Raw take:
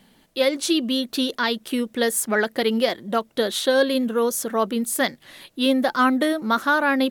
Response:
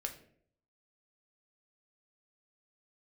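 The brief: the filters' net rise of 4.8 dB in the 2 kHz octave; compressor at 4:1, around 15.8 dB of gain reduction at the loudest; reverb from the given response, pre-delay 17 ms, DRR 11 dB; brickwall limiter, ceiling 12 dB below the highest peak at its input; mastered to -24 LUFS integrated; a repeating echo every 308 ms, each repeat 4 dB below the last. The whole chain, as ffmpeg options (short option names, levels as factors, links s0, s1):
-filter_complex "[0:a]equalizer=f=2000:t=o:g=6.5,acompressor=threshold=0.0224:ratio=4,alimiter=level_in=2.24:limit=0.0631:level=0:latency=1,volume=0.447,aecho=1:1:308|616|924|1232|1540|1848|2156|2464|2772:0.631|0.398|0.25|0.158|0.0994|0.0626|0.0394|0.0249|0.0157,asplit=2[s0][s1];[1:a]atrim=start_sample=2205,adelay=17[s2];[s1][s2]afir=irnorm=-1:irlink=0,volume=0.299[s3];[s0][s3]amix=inputs=2:normalize=0,volume=4.47"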